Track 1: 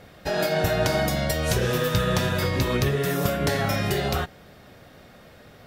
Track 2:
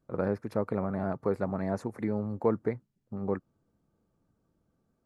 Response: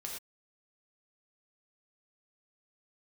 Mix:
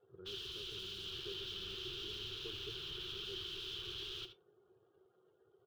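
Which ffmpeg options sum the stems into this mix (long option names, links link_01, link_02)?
-filter_complex "[0:a]bandpass=frequency=740:width_type=q:width=2:csg=0,aeval=exprs='(mod(56.2*val(0)+1,2)-1)/56.2':channel_layout=same,acrusher=bits=2:mode=log:mix=0:aa=0.000001,volume=-4dB,asplit=3[link_01][link_02][link_03];[link_02]volume=-12dB[link_04];[link_03]volume=-10dB[link_05];[1:a]bandreject=frequency=50:width_type=h:width=6,bandreject=frequency=100:width_type=h:width=6,volume=-19dB[link_06];[2:a]atrim=start_sample=2205[link_07];[link_04][link_07]afir=irnorm=-1:irlink=0[link_08];[link_05]aecho=0:1:75:1[link_09];[link_01][link_06][link_08][link_09]amix=inputs=4:normalize=0,afftdn=noise_reduction=24:noise_floor=-61,firequalizer=gain_entry='entry(120,0);entry(250,-24);entry(370,6);entry(590,-28);entry(1400,-9);entry(2000,-21);entry(3100,8);entry(4500,-6);entry(7800,-23)':delay=0.05:min_phase=1"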